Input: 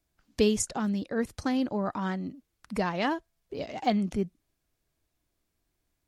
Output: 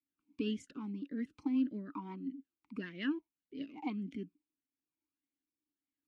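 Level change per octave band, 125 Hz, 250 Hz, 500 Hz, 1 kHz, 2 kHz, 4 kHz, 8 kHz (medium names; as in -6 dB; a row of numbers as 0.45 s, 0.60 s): -13.0 dB, -7.0 dB, -17.5 dB, -17.5 dB, -11.0 dB, -12.0 dB, under -25 dB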